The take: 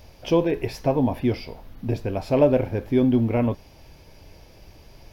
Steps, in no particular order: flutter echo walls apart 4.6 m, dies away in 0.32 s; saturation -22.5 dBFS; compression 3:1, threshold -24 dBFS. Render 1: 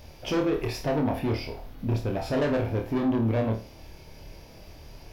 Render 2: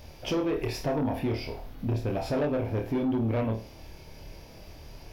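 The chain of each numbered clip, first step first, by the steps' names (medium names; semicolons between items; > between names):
saturation > compression > flutter echo; compression > flutter echo > saturation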